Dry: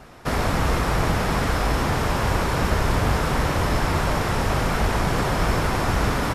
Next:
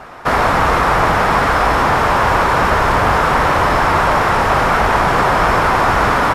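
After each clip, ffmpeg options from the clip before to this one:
-filter_complex "[0:a]equalizer=f=1100:t=o:w=2.7:g=13.5,asplit=2[s0][s1];[s1]asoftclip=type=hard:threshold=0.188,volume=0.316[s2];[s0][s2]amix=inputs=2:normalize=0,volume=0.891"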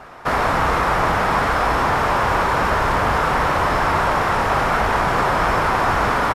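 -filter_complex "[0:a]asplit=2[s0][s1];[s1]adelay=33,volume=0.224[s2];[s0][s2]amix=inputs=2:normalize=0,volume=0.562"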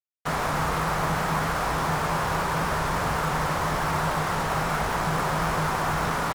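-af "equalizer=f=160:w=7:g=15,acrusher=bits=3:mix=0:aa=0.5,volume=0.376"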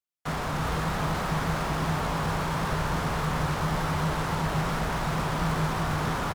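-filter_complex "[0:a]acrossover=split=340[s0][s1];[s1]asoftclip=type=tanh:threshold=0.0299[s2];[s0][s2]amix=inputs=2:normalize=0,aecho=1:1:378:0.596"

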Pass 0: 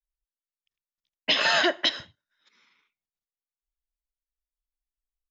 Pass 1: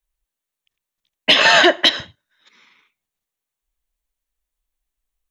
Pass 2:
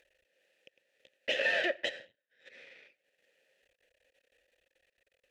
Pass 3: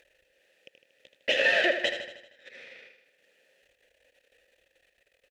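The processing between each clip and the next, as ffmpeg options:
-af "acontrast=74,equalizer=f=5000:w=5:g=-7,bandreject=f=1400:w=17,volume=1.68"
-filter_complex "[0:a]aeval=exprs='max(val(0),0)':c=same,acompressor=mode=upward:threshold=0.126:ratio=2.5,asplit=3[s0][s1][s2];[s0]bandpass=f=530:t=q:w=8,volume=1[s3];[s1]bandpass=f=1840:t=q:w=8,volume=0.501[s4];[s2]bandpass=f=2480:t=q:w=8,volume=0.355[s5];[s3][s4][s5]amix=inputs=3:normalize=0,volume=0.794"
-af "aecho=1:1:78|156|234|312|390|468|546:0.355|0.199|0.111|0.0623|0.0349|0.0195|0.0109,volume=2"

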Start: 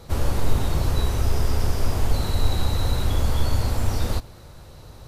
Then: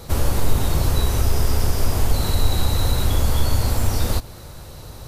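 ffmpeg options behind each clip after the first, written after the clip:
-filter_complex "[0:a]highshelf=f=7400:g=8.5,asplit=2[s0][s1];[s1]acompressor=threshold=0.0631:ratio=6,volume=0.891[s2];[s0][s2]amix=inputs=2:normalize=0"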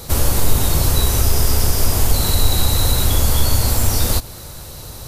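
-af "highshelf=f=4300:g=9.5,volume=1.33"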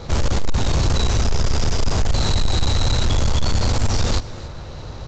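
-af "adynamicsmooth=sensitivity=6:basefreq=2300,aecho=1:1:283:0.0841,aresample=16000,asoftclip=type=tanh:threshold=0.188,aresample=44100,volume=1.33"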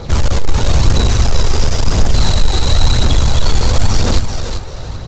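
-af "aecho=1:1:389|778|1167:0.447|0.116|0.0302,aphaser=in_gain=1:out_gain=1:delay=2.6:decay=0.3:speed=0.98:type=triangular,volume=1.58"

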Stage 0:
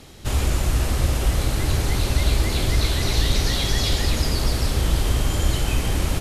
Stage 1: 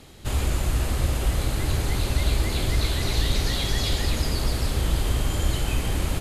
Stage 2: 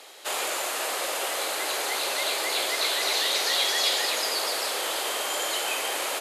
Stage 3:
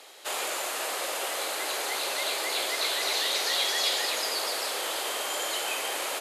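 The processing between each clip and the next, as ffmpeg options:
-af "equalizer=f=5600:t=o:w=0.21:g=-5.5,volume=0.708"
-af "highpass=f=500:w=0.5412,highpass=f=500:w=1.3066,volume=1.88"
-af "highpass=72,volume=0.75"

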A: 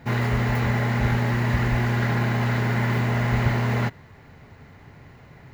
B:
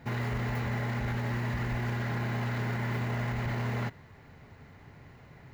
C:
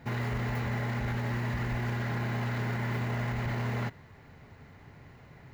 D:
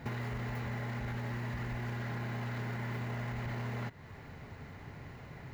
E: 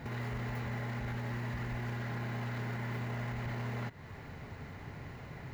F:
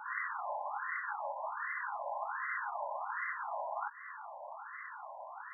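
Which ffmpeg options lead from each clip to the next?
-af "alimiter=limit=0.106:level=0:latency=1:release=27,volume=0.562"
-af anull
-af "acompressor=threshold=0.00891:ratio=4,volume=1.58"
-af "alimiter=level_in=2.66:limit=0.0631:level=0:latency=1:release=107,volume=0.376,volume=1.26"
-af "afftfilt=real='re*between(b*sr/1024,730*pow(1500/730,0.5+0.5*sin(2*PI*1.3*pts/sr))/1.41,730*pow(1500/730,0.5+0.5*sin(2*PI*1.3*pts/sr))*1.41)':imag='im*between(b*sr/1024,730*pow(1500/730,0.5+0.5*sin(2*PI*1.3*pts/sr))/1.41,730*pow(1500/730,0.5+0.5*sin(2*PI*1.3*pts/sr))*1.41)':win_size=1024:overlap=0.75,volume=3.35"

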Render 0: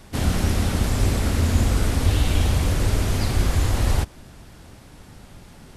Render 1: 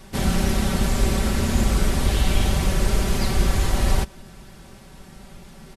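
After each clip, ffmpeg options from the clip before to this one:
-af "aecho=1:1:5.2:0.62"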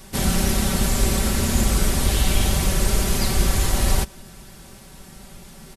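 -af "highshelf=f=5600:g=10"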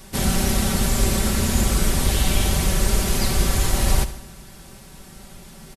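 -af "aecho=1:1:71|142|213|284|355|426:0.2|0.11|0.0604|0.0332|0.0183|0.01"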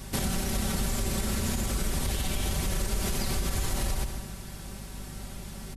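-af "alimiter=limit=0.178:level=0:latency=1:release=105,acompressor=threshold=0.0447:ratio=2.5,aeval=exprs='val(0)+0.00794*(sin(2*PI*50*n/s)+sin(2*PI*2*50*n/s)/2+sin(2*PI*3*50*n/s)/3+sin(2*PI*4*50*n/s)/4+sin(2*PI*5*50*n/s)/5)':c=same"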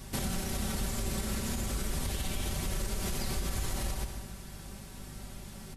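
-af "flanger=delay=8.2:depth=9.9:regen=-73:speed=0.38:shape=sinusoidal"

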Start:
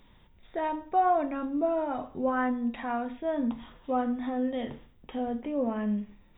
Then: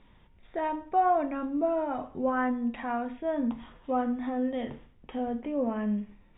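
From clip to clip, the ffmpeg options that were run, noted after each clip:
-af "lowpass=f=3300:w=0.5412,lowpass=f=3300:w=1.3066"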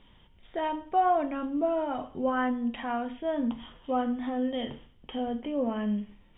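-af "equalizer=f=3100:w=6.6:g=13"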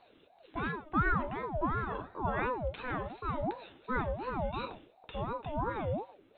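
-af "aeval=exprs='val(0)*sin(2*PI*530*n/s+530*0.45/2.8*sin(2*PI*2.8*n/s))':c=same,volume=0.794"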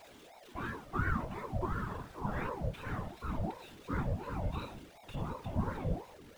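-af "aeval=exprs='val(0)+0.5*0.00531*sgn(val(0))':c=same,asubboost=boost=3:cutoff=250,afftfilt=real='hypot(re,im)*cos(2*PI*random(0))':imag='hypot(re,im)*sin(2*PI*random(1))':win_size=512:overlap=0.75"

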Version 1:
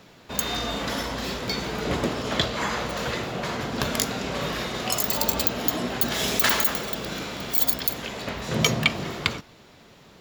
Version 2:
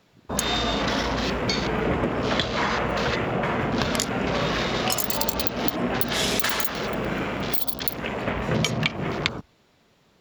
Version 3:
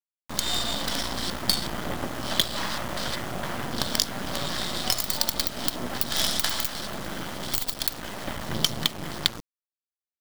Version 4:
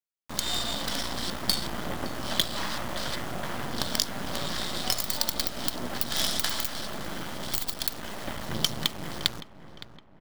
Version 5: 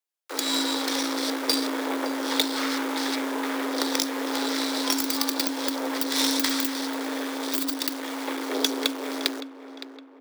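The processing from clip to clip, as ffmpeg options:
-af "afwtdn=0.0158,acompressor=threshold=0.0501:ratio=12,volume=2.11"
-af "superequalizer=7b=0.282:12b=0.355:13b=2.24:14b=2.82,acrusher=bits=3:dc=4:mix=0:aa=0.000001,volume=0.75"
-filter_complex "[0:a]asplit=2[s0][s1];[s1]adelay=564,lowpass=f=2200:p=1,volume=0.224,asplit=2[s2][s3];[s3]adelay=564,lowpass=f=2200:p=1,volume=0.52,asplit=2[s4][s5];[s5]adelay=564,lowpass=f=2200:p=1,volume=0.52,asplit=2[s6][s7];[s7]adelay=564,lowpass=f=2200:p=1,volume=0.52,asplit=2[s8][s9];[s9]adelay=564,lowpass=f=2200:p=1,volume=0.52[s10];[s0][s2][s4][s6][s8][s10]amix=inputs=6:normalize=0,volume=0.75"
-filter_complex "[0:a]afreqshift=270,acrossover=split=300|670|2900[s0][s1][s2][s3];[s3]volume=8.41,asoftclip=hard,volume=0.119[s4];[s0][s1][s2][s4]amix=inputs=4:normalize=0,volume=1.5"

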